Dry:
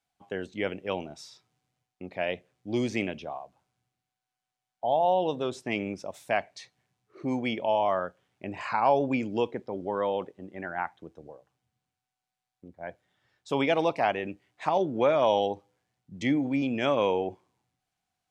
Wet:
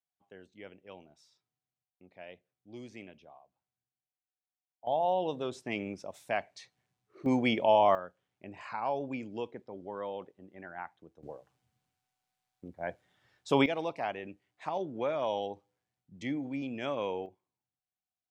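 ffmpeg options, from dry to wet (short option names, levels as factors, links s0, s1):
-af "asetnsamples=n=441:p=0,asendcmd='4.87 volume volume -5dB;7.26 volume volume 2dB;7.95 volume volume -10dB;11.23 volume volume 2dB;13.66 volume volume -9dB;17.26 volume volume -18dB',volume=0.126"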